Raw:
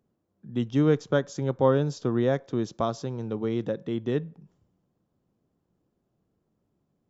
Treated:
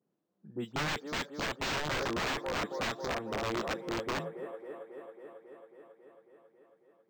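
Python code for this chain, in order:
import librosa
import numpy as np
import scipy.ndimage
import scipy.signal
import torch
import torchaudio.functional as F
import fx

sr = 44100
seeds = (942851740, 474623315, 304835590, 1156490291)

y = fx.spec_delay(x, sr, highs='late', ms=106)
y = scipy.signal.sosfilt(scipy.signal.butter(4, 160.0, 'highpass', fs=sr, output='sos'), y)
y = fx.echo_wet_bandpass(y, sr, ms=273, feedback_pct=74, hz=1000.0, wet_db=-4.0)
y = (np.mod(10.0 ** (22.5 / 20.0) * y + 1.0, 2.0) - 1.0) / 10.0 ** (22.5 / 20.0)
y = np.interp(np.arange(len(y)), np.arange(len(y))[::4], y[::4])
y = y * librosa.db_to_amplitude(-4.5)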